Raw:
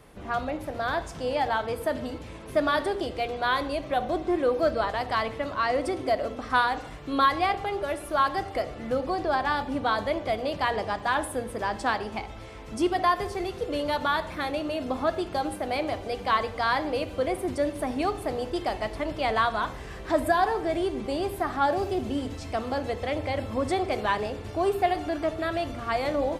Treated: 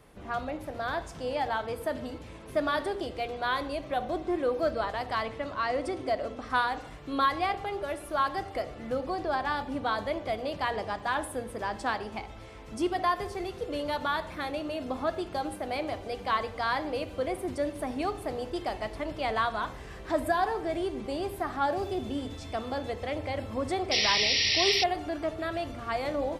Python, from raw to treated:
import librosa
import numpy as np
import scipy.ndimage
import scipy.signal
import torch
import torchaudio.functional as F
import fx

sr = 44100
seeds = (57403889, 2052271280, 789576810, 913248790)

y = fx.lowpass(x, sr, hz=10000.0, slope=12, at=(5.25, 6.46))
y = fx.dmg_tone(y, sr, hz=3500.0, level_db=-48.0, at=(21.84, 22.91), fade=0.02)
y = fx.spec_paint(y, sr, seeds[0], shape='noise', start_s=23.91, length_s=0.93, low_hz=1800.0, high_hz=5800.0, level_db=-22.0)
y = y * 10.0 ** (-4.0 / 20.0)